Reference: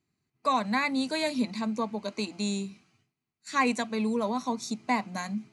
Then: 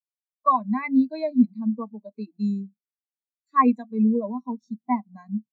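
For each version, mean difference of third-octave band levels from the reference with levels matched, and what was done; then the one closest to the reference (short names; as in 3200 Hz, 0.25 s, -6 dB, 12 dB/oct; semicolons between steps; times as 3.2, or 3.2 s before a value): 16.5 dB: spectral expander 2.5:1; gain +5 dB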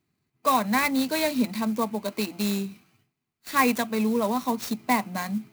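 4.5 dB: clock jitter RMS 0.031 ms; gain +4 dB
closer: second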